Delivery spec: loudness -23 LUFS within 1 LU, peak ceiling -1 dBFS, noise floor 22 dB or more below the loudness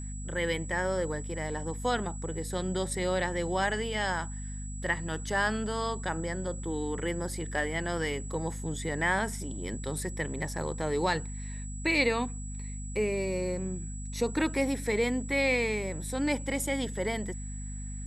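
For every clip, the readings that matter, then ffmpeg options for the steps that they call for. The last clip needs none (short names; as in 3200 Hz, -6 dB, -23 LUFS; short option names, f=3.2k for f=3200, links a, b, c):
hum 50 Hz; harmonics up to 250 Hz; hum level -36 dBFS; steady tone 7800 Hz; tone level -45 dBFS; loudness -31.5 LUFS; peak -14.0 dBFS; loudness target -23.0 LUFS
-> -af "bandreject=f=50:t=h:w=4,bandreject=f=100:t=h:w=4,bandreject=f=150:t=h:w=4,bandreject=f=200:t=h:w=4,bandreject=f=250:t=h:w=4"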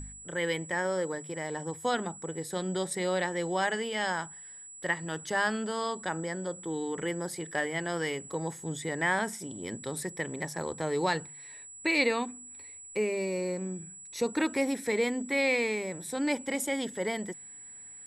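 hum none; steady tone 7800 Hz; tone level -45 dBFS
-> -af "bandreject=f=7.8k:w=30"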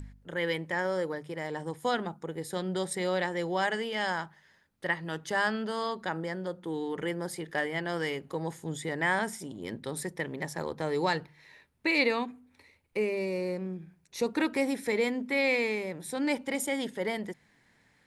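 steady tone none; loudness -31.5 LUFS; peak -14.5 dBFS; loudness target -23.0 LUFS
-> -af "volume=8.5dB"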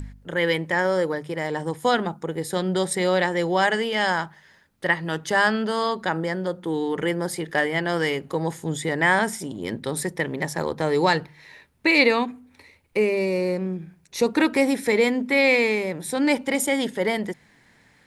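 loudness -23.0 LUFS; peak -6.0 dBFS; noise floor -58 dBFS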